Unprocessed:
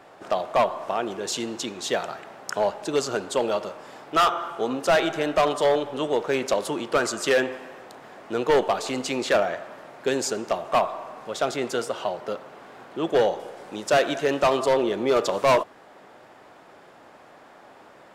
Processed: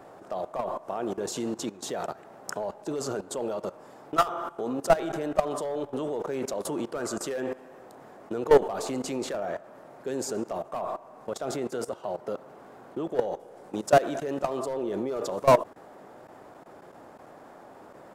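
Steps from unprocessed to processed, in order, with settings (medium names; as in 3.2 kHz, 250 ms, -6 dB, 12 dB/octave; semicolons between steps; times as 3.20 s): level held to a coarse grid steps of 17 dB; peaking EQ 3 kHz -11.5 dB 2.4 oct; trim +5 dB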